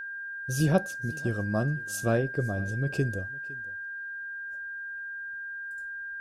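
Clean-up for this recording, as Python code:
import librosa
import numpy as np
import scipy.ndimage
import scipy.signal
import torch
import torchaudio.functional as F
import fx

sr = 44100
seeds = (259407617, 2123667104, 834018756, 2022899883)

y = fx.notch(x, sr, hz=1600.0, q=30.0)
y = fx.fix_echo_inverse(y, sr, delay_ms=509, level_db=-22.0)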